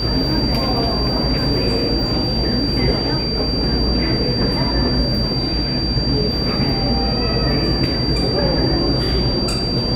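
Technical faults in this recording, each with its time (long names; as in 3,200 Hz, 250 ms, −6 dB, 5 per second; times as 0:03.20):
whistle 4,700 Hz −22 dBFS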